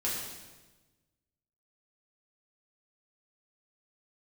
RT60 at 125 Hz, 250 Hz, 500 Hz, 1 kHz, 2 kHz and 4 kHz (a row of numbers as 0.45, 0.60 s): 1.7, 1.5, 1.3, 1.1, 1.1, 1.1 s